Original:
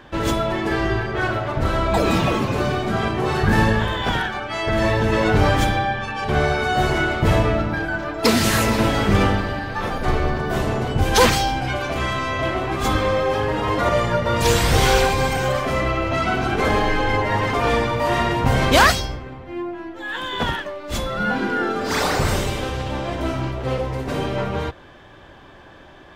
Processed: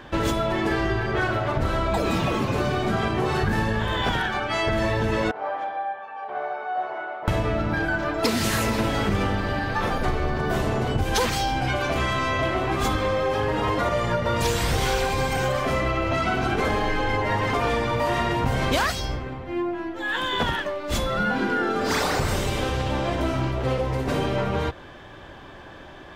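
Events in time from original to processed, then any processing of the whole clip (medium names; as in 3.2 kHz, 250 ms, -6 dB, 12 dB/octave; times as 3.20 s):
5.31–7.28 s: ladder band-pass 850 Hz, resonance 40%
whole clip: compression, threshold -22 dBFS; trim +2 dB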